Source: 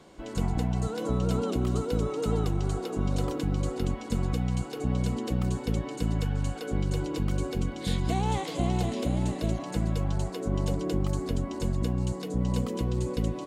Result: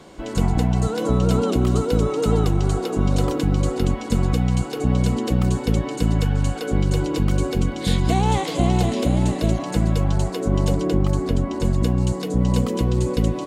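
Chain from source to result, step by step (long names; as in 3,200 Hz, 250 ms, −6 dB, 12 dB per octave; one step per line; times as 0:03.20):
0:10.87–0:11.65: high-shelf EQ 4,300 Hz −6 dB
level +8.5 dB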